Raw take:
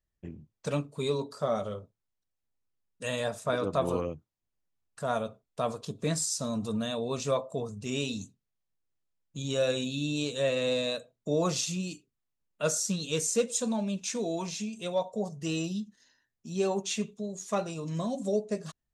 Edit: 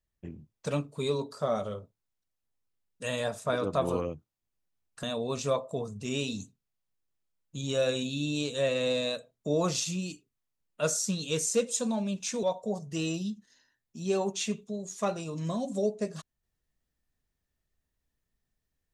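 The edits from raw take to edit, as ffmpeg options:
ffmpeg -i in.wav -filter_complex "[0:a]asplit=3[link_01][link_02][link_03];[link_01]atrim=end=5.032[link_04];[link_02]atrim=start=6.838:end=14.242[link_05];[link_03]atrim=start=14.928[link_06];[link_04][link_05]acrossfade=duration=0.004:curve1=hsin:curve2=hsin[link_07];[link_07][link_06]acrossfade=duration=0.004:curve1=hsin:curve2=hsin" out.wav

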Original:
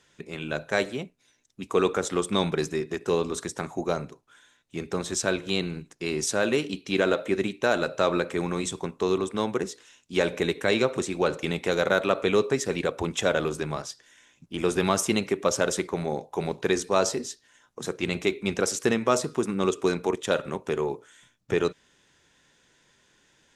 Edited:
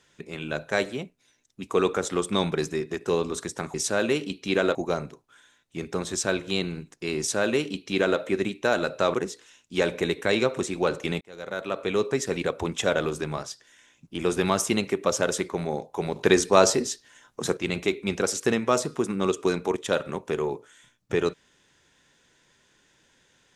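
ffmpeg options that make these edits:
ffmpeg -i in.wav -filter_complex "[0:a]asplit=7[link_01][link_02][link_03][link_04][link_05][link_06][link_07];[link_01]atrim=end=3.742[link_08];[link_02]atrim=start=6.168:end=7.182[link_09];[link_03]atrim=start=3.738:end=8.132[link_10];[link_04]atrim=start=9.528:end=11.6,asetpts=PTS-STARTPTS,afade=type=out:start_time=2.068:duration=0.004:curve=hsin[link_11];[link_05]atrim=start=11.6:end=16.552,asetpts=PTS-STARTPTS,afade=type=in:duration=1.02[link_12];[link_06]atrim=start=16.548:end=17.962,asetpts=PTS-STARTPTS,volume=5.5dB[link_13];[link_07]atrim=start=17.958[link_14];[link_08][link_09]acrossfade=duration=0.004:curve1=hsin:curve2=hsin[link_15];[link_15][link_10]acrossfade=duration=0.004:curve1=hsin:curve2=hsin[link_16];[link_11][link_12]concat=n=2:v=0:a=1[link_17];[link_16][link_17]acrossfade=duration=0.004:curve1=hsin:curve2=hsin[link_18];[link_18][link_13]acrossfade=duration=0.004:curve1=hsin:curve2=hsin[link_19];[link_19][link_14]acrossfade=duration=0.004:curve1=hsin:curve2=hsin" out.wav

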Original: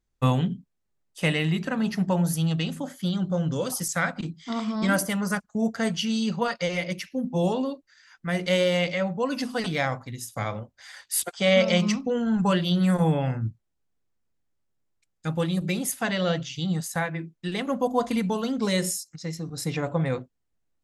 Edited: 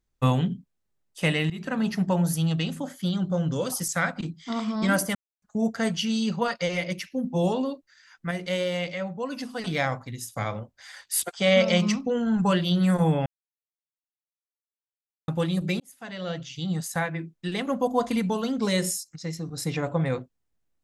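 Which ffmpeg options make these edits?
ffmpeg -i in.wav -filter_complex "[0:a]asplit=9[link_01][link_02][link_03][link_04][link_05][link_06][link_07][link_08][link_09];[link_01]atrim=end=1.5,asetpts=PTS-STARTPTS,afade=type=out:start_time=1.496:duration=0.004:curve=hsin:silence=0.149624[link_10];[link_02]atrim=start=1.5:end=5.15,asetpts=PTS-STARTPTS,afade=type=in:duration=0.25:silence=0.149624,afade=type=out:start_time=3.646:duration=0.004:curve=hsin[link_11];[link_03]atrim=start=5.15:end=5.42,asetpts=PTS-STARTPTS,volume=0[link_12];[link_04]atrim=start=5.42:end=8.312,asetpts=PTS-STARTPTS,afade=type=in:duration=0.004:curve=hsin[link_13];[link_05]atrim=start=8.308:end=9.672,asetpts=PTS-STARTPTS,volume=-5dB[link_14];[link_06]atrim=start=9.668:end=13.26,asetpts=PTS-STARTPTS,afade=type=out:start_time=3.588:duration=0.004:curve=hsin[link_15];[link_07]atrim=start=13.26:end=15.28,asetpts=PTS-STARTPTS,volume=0[link_16];[link_08]atrim=start=15.28:end=15.8,asetpts=PTS-STARTPTS,afade=type=in:duration=0.004:curve=hsin,afade=type=out:start_time=0.516:duration=0.004:curve=hsin[link_17];[link_09]atrim=start=15.8,asetpts=PTS-STARTPTS,afade=type=in:duration=1.1[link_18];[link_10][link_11][link_12][link_13]concat=n=4:v=0:a=1[link_19];[link_19][link_14]acrossfade=duration=0.004:curve1=hsin:curve2=hsin[link_20];[link_15][link_16][link_17][link_18]concat=n=4:v=0:a=1[link_21];[link_20][link_21]acrossfade=duration=0.004:curve1=hsin:curve2=hsin" out.wav

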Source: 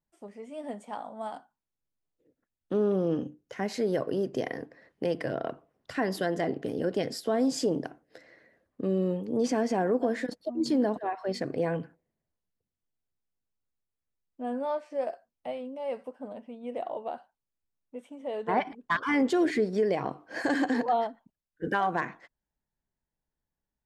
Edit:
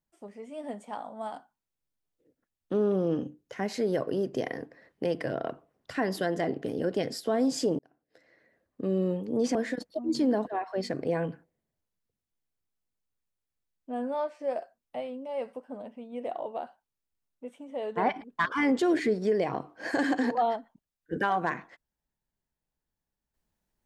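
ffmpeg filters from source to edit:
ffmpeg -i in.wav -filter_complex "[0:a]asplit=3[link_01][link_02][link_03];[link_01]atrim=end=7.79,asetpts=PTS-STARTPTS,afade=type=out:start_time=7.786:duration=0.004:curve=hsin[link_04];[link_02]atrim=start=7.79:end=9.552,asetpts=PTS-STARTPTS,afade=type=in:duration=1.18[link_05];[link_03]atrim=start=10.058[link_06];[link_04][link_05]concat=n=2:v=0:a=1[link_07];[link_07][link_06]acrossfade=duration=0.004:curve1=hsin:curve2=hsin" out.wav

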